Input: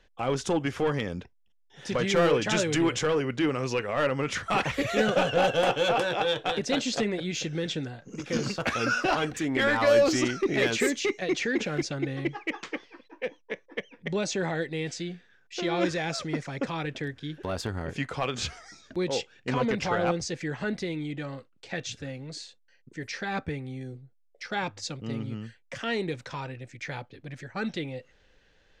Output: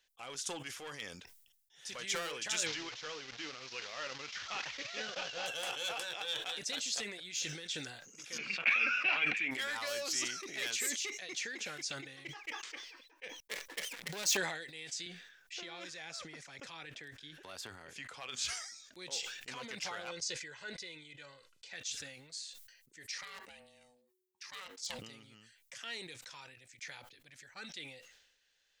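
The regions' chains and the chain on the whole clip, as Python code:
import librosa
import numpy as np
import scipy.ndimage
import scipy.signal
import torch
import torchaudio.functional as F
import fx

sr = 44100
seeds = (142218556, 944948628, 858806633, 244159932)

y = fx.chain(x, sr, fx.delta_mod(bps=32000, step_db=-28.0),
    fx.air_absorb(metres=81.0),
    fx.transient(attack_db=1, sustain_db=-11), at=(2.66, 5.46))
y = fx.chain(y, sr, fx.lowpass_res(hz=2400.0, q=9.4),
    fx.low_shelf_res(hz=130.0, db=-11.0, q=3.0), at=(8.38, 9.51))
y = fx.chain(y, sr, fx.gate_hold(open_db=-49.0, close_db=-57.0, hold_ms=71.0, range_db=-21, attack_ms=1.4, release_ms=100.0),
    fx.high_shelf(hz=3900.0, db=-5.0),
    fx.leveller(passes=3), at=(13.4, 14.37))
y = fx.chain(y, sr, fx.high_shelf(hz=3800.0, db=-9.0),
    fx.band_squash(depth_pct=70), at=(15.06, 18.29))
y = fx.chain(y, sr, fx.lowpass(hz=7300.0, slope=12),
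    fx.comb(ms=2.0, depth=0.48), at=(20.07, 21.73))
y = fx.chain(y, sr, fx.peak_eq(hz=280.0, db=-4.5, octaves=1.8),
    fx.clip_hard(threshold_db=-25.5),
    fx.ring_mod(carrier_hz=370.0), at=(23.18, 24.99))
y = librosa.effects.preemphasis(y, coef=0.97, zi=[0.0])
y = fx.sustainer(y, sr, db_per_s=55.0)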